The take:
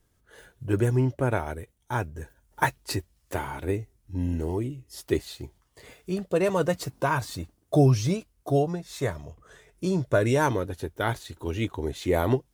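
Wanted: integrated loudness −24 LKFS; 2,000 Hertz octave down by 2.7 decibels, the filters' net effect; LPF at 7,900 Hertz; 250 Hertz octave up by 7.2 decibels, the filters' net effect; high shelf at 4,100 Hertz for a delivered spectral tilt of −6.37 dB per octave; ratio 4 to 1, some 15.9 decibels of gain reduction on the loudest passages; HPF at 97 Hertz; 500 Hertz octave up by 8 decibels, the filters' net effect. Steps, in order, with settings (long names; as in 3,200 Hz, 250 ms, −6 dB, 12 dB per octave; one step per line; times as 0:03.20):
high-pass filter 97 Hz
low-pass filter 7,900 Hz
parametric band 250 Hz +7 dB
parametric band 500 Hz +8 dB
parametric band 2,000 Hz −5.5 dB
high-shelf EQ 4,100 Hz +4 dB
downward compressor 4 to 1, threshold −28 dBFS
level +9 dB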